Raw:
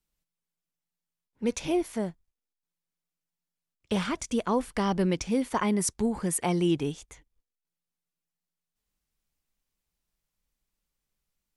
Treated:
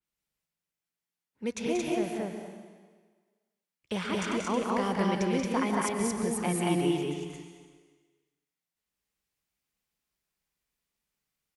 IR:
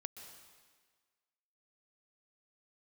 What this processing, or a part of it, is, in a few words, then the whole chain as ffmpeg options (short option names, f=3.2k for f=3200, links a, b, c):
stadium PA: -filter_complex "[0:a]highpass=f=130:p=1,equalizer=f=2.1k:t=o:w=1:g=3.5,aecho=1:1:183.7|224.5:0.562|0.891[a];[1:a]atrim=start_sample=2205[b];[a][b]afir=irnorm=-1:irlink=0,adynamicequalizer=threshold=0.00355:dfrequency=4100:dqfactor=0.7:tfrequency=4100:tqfactor=0.7:attack=5:release=100:ratio=0.375:range=2:mode=cutabove:tftype=highshelf"